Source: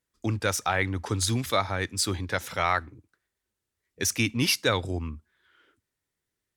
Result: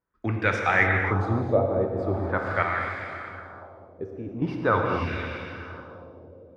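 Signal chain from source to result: 2.62–4.42 s: level held to a coarse grid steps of 17 dB; echo that smears into a reverb 481 ms, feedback 45%, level -11 dB; LFO low-pass sine 0.43 Hz 510–2200 Hz; gated-style reverb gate 300 ms flat, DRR 1.5 dB

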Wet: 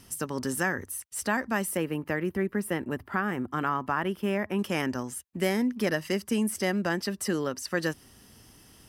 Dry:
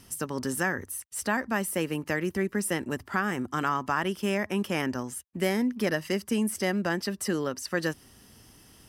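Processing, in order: 1.77–4.59 s: peaking EQ 6.6 kHz -13 dB 1.6 oct

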